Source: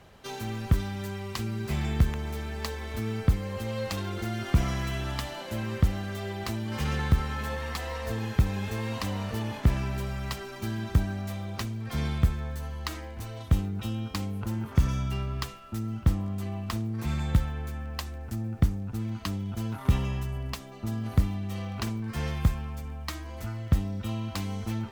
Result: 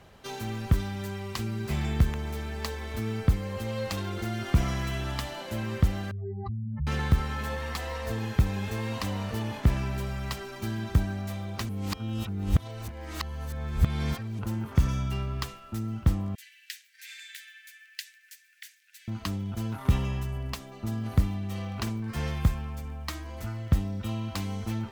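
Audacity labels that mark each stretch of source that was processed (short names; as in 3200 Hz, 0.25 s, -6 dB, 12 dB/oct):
6.110000	6.870000	spectral contrast raised exponent 4
11.690000	14.390000	reverse
16.350000	19.080000	steep high-pass 1600 Hz 96 dB/oct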